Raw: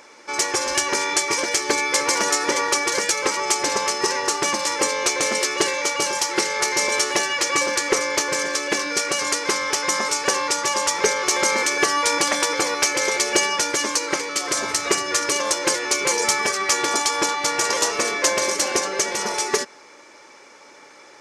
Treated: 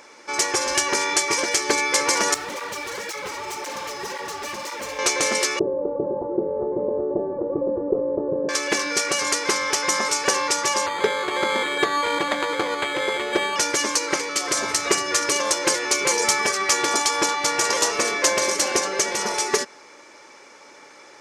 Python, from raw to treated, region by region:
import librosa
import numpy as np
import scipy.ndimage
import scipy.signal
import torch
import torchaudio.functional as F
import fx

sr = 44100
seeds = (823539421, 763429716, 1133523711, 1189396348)

y = fx.chain(x, sr, fx.lowpass(hz=3400.0, slope=6),
    fx.clip_hard(threshold_db=-26.0),
    fx.flanger_cancel(hz=1.9, depth_ms=6.2), at=(2.34, 4.99))
y = fx.chain(y, sr, fx.cheby2_lowpass(hz=2500.0, order=4, stop_db=70),
    fx.env_flatten(amount_pct=50), at=(5.59, 8.49))
y = fx.chain(y, sr, fx.highpass(hz=61.0, slope=12),
    fx.resample_bad(factor=8, down='filtered', up='hold'),
    fx.air_absorb(metres=85.0), at=(10.86, 13.56))